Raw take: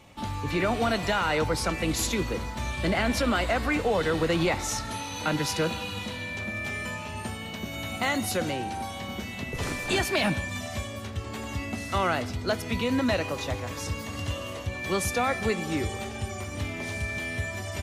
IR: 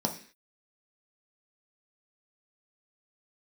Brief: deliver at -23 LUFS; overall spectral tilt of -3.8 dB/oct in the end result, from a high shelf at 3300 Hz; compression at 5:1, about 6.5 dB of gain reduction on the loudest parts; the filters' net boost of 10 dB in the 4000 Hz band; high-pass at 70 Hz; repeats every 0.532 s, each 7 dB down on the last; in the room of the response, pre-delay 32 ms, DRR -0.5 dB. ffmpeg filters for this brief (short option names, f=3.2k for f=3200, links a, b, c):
-filter_complex "[0:a]highpass=70,highshelf=f=3.3k:g=8,equalizer=f=4k:t=o:g=7,acompressor=threshold=-24dB:ratio=5,aecho=1:1:532|1064|1596|2128|2660:0.447|0.201|0.0905|0.0407|0.0183,asplit=2[a][b];[1:a]atrim=start_sample=2205,adelay=32[c];[b][c]afir=irnorm=-1:irlink=0,volume=-6.5dB[d];[a][d]amix=inputs=2:normalize=0"